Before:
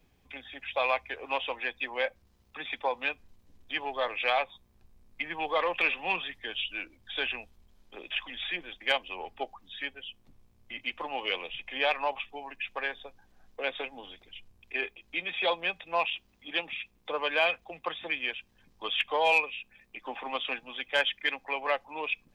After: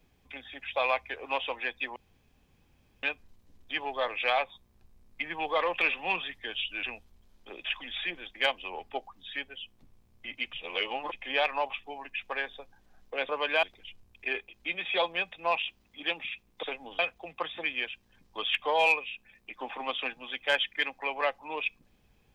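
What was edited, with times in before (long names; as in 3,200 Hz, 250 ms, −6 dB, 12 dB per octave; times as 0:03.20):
0:01.96–0:03.03: fill with room tone
0:06.83–0:07.29: remove
0:10.99–0:11.58: reverse
0:13.75–0:14.11: swap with 0:17.11–0:17.45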